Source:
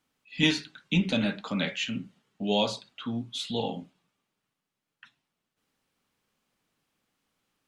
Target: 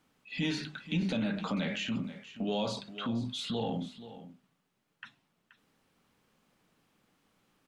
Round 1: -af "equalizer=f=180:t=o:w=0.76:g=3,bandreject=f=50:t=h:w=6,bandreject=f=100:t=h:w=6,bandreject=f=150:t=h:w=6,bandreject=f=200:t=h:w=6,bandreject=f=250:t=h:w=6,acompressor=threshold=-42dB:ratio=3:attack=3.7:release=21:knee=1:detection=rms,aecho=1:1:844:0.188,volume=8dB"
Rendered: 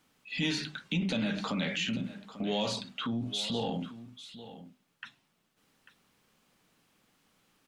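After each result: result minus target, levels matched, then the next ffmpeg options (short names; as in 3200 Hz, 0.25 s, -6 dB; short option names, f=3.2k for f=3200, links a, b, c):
echo 0.366 s late; 4000 Hz band +3.0 dB
-af "equalizer=f=180:t=o:w=0.76:g=3,bandreject=f=50:t=h:w=6,bandreject=f=100:t=h:w=6,bandreject=f=150:t=h:w=6,bandreject=f=200:t=h:w=6,bandreject=f=250:t=h:w=6,acompressor=threshold=-42dB:ratio=3:attack=3.7:release=21:knee=1:detection=rms,aecho=1:1:478:0.188,volume=8dB"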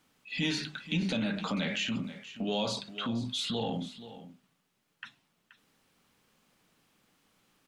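4000 Hz band +3.0 dB
-af "equalizer=f=180:t=o:w=0.76:g=3,bandreject=f=50:t=h:w=6,bandreject=f=100:t=h:w=6,bandreject=f=150:t=h:w=6,bandreject=f=200:t=h:w=6,bandreject=f=250:t=h:w=6,acompressor=threshold=-42dB:ratio=3:attack=3.7:release=21:knee=1:detection=rms,highshelf=f=2.1k:g=-6,aecho=1:1:478:0.188,volume=8dB"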